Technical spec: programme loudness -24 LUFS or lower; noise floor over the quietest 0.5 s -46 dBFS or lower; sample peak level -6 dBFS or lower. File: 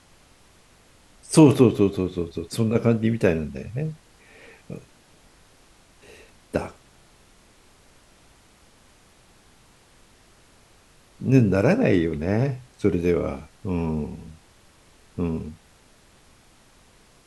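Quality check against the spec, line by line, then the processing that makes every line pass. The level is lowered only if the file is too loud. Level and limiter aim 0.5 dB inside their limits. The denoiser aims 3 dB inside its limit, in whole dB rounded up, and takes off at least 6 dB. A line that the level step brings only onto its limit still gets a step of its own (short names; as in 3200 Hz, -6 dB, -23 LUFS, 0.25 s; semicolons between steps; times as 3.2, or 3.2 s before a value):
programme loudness -22.5 LUFS: fail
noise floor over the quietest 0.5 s -55 dBFS: OK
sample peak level -3.5 dBFS: fail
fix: gain -2 dB; limiter -6.5 dBFS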